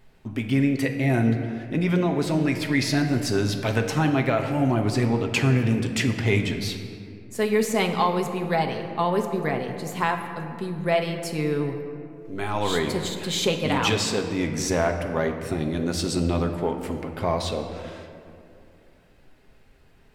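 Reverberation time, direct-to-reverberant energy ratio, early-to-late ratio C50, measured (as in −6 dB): 2.6 s, 3.0 dB, 7.0 dB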